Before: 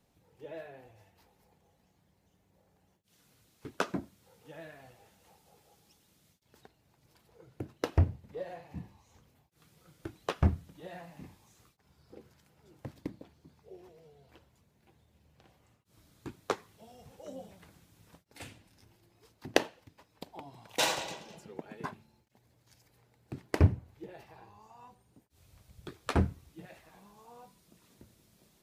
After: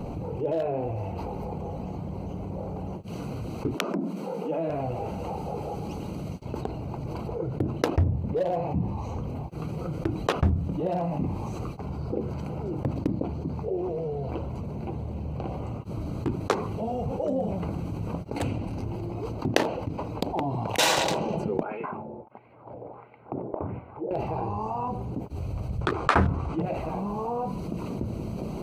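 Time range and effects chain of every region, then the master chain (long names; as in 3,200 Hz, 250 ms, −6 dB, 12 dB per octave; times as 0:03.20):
0:03.75–0:04.70: Butterworth high-pass 160 Hz 96 dB per octave + downward compressor 16 to 1, threshold −44 dBFS
0:21.63–0:24.11: LFO wah 1.5 Hz 500–2,300 Hz, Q 2.3 + high-frequency loss of the air 450 metres + downward compressor, threshold −56 dBFS
0:25.81–0:26.62: low-pass filter 9,700 Hz 24 dB per octave + parametric band 1,200 Hz +14.5 dB 2 octaves
whole clip: adaptive Wiener filter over 25 samples; envelope flattener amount 70%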